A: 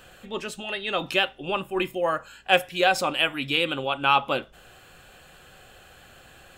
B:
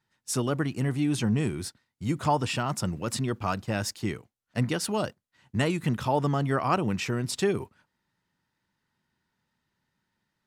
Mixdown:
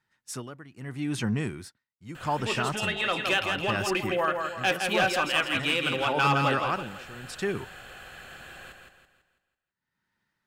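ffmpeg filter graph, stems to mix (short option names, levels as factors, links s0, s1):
-filter_complex "[0:a]highshelf=f=11000:g=-2.5,acompressor=threshold=0.0178:ratio=1.5,asoftclip=type=hard:threshold=0.075,adelay=2150,volume=1.12,asplit=2[s0][s1];[s1]volume=0.562[s2];[1:a]tremolo=f=0.78:d=0.87,volume=0.75[s3];[s2]aecho=0:1:165|330|495|660|825|990:1|0.42|0.176|0.0741|0.0311|0.0131[s4];[s0][s3][s4]amix=inputs=3:normalize=0,equalizer=f=1700:t=o:w=1.3:g=6.5"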